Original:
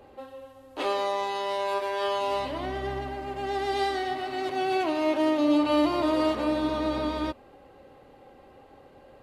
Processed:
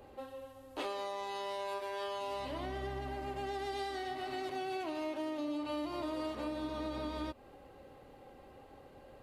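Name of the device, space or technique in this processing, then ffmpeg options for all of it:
ASMR close-microphone chain: -af "lowshelf=f=130:g=4.5,acompressor=threshold=0.0251:ratio=6,highshelf=f=6400:g=6,volume=0.631"

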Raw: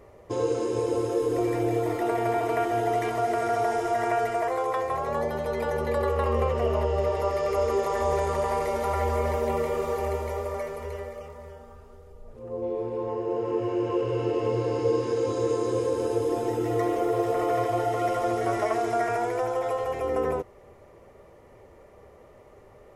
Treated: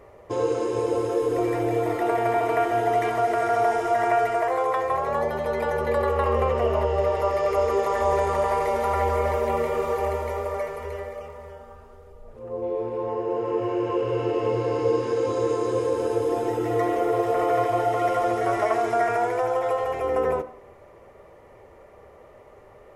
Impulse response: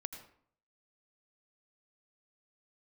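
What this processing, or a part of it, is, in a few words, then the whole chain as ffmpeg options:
filtered reverb send: -filter_complex "[0:a]asplit=2[s0][s1];[s1]highpass=380,lowpass=3500[s2];[1:a]atrim=start_sample=2205[s3];[s2][s3]afir=irnorm=-1:irlink=0,volume=0.841[s4];[s0][s4]amix=inputs=2:normalize=0"

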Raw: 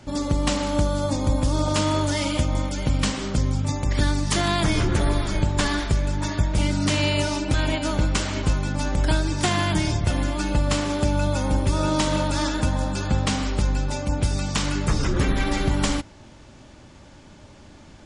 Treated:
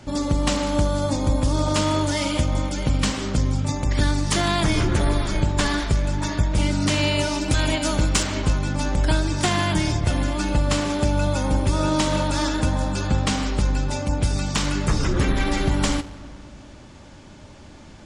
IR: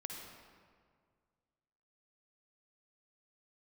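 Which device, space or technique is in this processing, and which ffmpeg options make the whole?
saturated reverb return: -filter_complex "[0:a]asplit=2[s0][s1];[1:a]atrim=start_sample=2205[s2];[s1][s2]afir=irnorm=-1:irlink=0,asoftclip=type=tanh:threshold=0.0398,volume=0.501[s3];[s0][s3]amix=inputs=2:normalize=0,asettb=1/sr,asplit=3[s4][s5][s6];[s4]atrim=end=7.414[s7];[s5]atrim=start=7.41:end=8.23,asetpts=PTS-STARTPTS,afade=t=in:d=0.004:c=qsin,afade=t=out:st=0.816:d=0.004:c=qsin,highshelf=f=5800:g=10[s8];[s6]atrim=start=8.226[s9];[s7][s8]acrossfade=d=0.004:c1=hsin:c2=qsin[s10];[s10][s9]acrossfade=d=0.004:c1=qsin:c2=hsin"

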